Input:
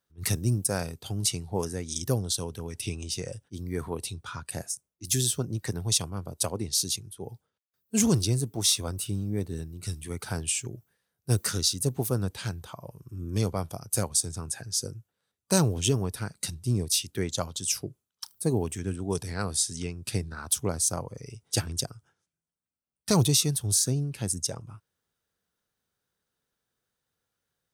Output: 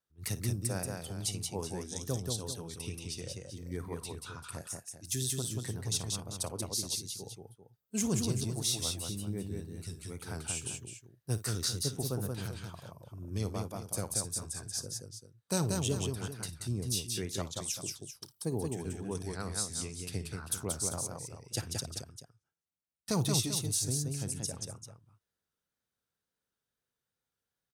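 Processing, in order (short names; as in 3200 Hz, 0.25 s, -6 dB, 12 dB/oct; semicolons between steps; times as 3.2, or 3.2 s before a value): tapped delay 55/181/391 ms -15.5/-3.5/-11.5 dB; wow and flutter 42 cents; gain -8.5 dB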